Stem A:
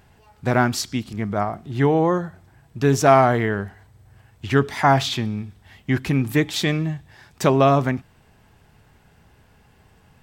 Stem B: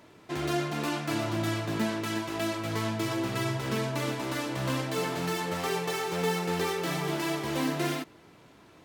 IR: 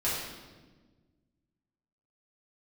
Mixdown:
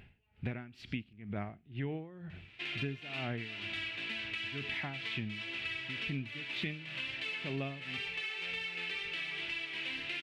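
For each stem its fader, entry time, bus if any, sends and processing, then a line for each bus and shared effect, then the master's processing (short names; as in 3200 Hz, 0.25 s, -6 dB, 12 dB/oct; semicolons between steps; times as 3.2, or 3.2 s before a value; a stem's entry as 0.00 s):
0.0 dB, 0.00 s, no send, dB-linear tremolo 2.1 Hz, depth 23 dB
-4.5 dB, 2.30 s, no send, weighting filter ITU-R 468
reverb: off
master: EQ curve 230 Hz 0 dB, 1100 Hz -13 dB, 2600 Hz +8 dB, 6400 Hz -24 dB; wow and flutter 21 cents; compressor 6:1, threshold -36 dBFS, peak gain reduction 19 dB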